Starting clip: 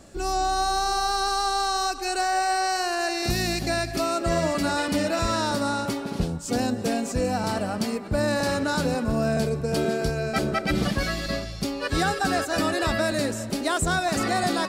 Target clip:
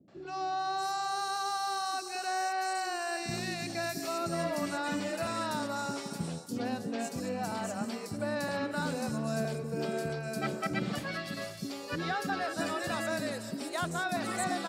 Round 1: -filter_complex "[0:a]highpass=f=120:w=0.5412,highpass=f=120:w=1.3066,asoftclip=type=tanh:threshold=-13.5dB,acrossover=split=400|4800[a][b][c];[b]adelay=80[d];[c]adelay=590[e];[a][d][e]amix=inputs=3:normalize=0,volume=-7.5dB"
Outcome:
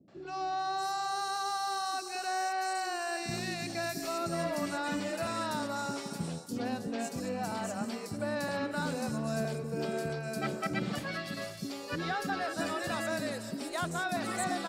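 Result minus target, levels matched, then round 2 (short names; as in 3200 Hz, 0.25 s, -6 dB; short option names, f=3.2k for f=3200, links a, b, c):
soft clip: distortion +13 dB
-filter_complex "[0:a]highpass=f=120:w=0.5412,highpass=f=120:w=1.3066,asoftclip=type=tanh:threshold=-6.5dB,acrossover=split=400|4800[a][b][c];[b]adelay=80[d];[c]adelay=590[e];[a][d][e]amix=inputs=3:normalize=0,volume=-7.5dB"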